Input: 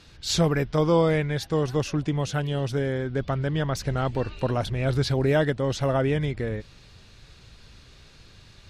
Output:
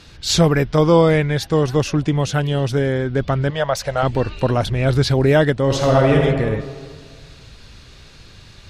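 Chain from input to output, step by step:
0:03.50–0:04.03: low shelf with overshoot 440 Hz −9 dB, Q 3
0:05.63–0:06.20: thrown reverb, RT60 1.8 s, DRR 0.5 dB
level +7.5 dB

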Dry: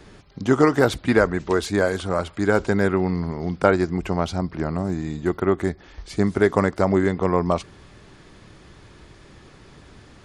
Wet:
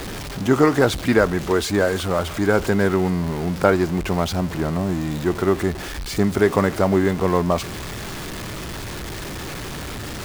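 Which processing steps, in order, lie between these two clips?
converter with a step at zero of −26 dBFS

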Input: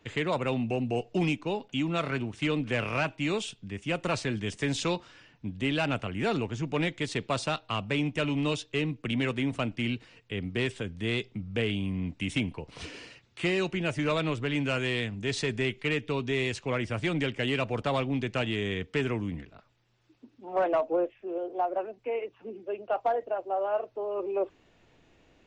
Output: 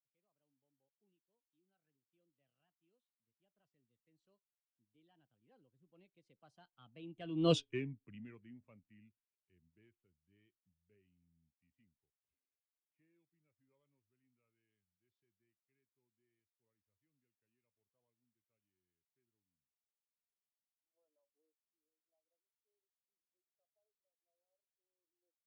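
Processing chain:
source passing by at 0:07.56, 41 m/s, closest 2.1 metres
every bin expanded away from the loudest bin 1.5 to 1
level +5 dB

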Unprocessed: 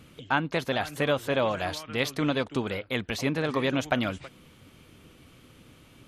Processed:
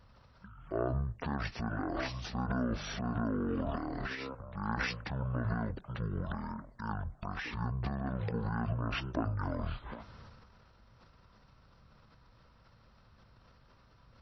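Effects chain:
transient designer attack −1 dB, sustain +11 dB
wrong playback speed 78 rpm record played at 33 rpm
level −9 dB

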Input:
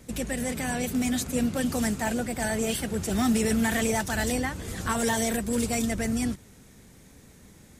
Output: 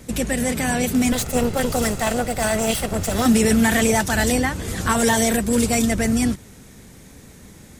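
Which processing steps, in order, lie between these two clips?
0:01.12–0:03.26: lower of the sound and its delayed copy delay 1.5 ms
level +8 dB

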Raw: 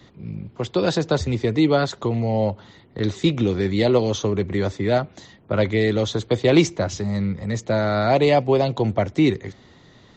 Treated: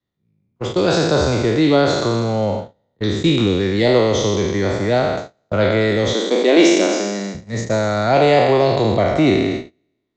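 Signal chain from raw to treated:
peak hold with a decay on every bin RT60 1.69 s
noise gate −22 dBFS, range −36 dB
0:06.13–0:07.35: linear-phase brick-wall high-pass 190 Hz
level +1 dB

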